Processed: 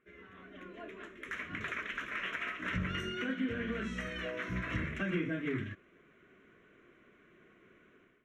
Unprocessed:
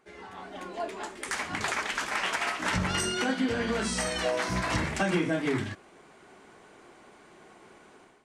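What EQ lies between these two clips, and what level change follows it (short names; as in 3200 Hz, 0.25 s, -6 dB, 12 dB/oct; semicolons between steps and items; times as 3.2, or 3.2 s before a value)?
running mean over 5 samples; fixed phaser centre 2000 Hz, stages 4; -5.0 dB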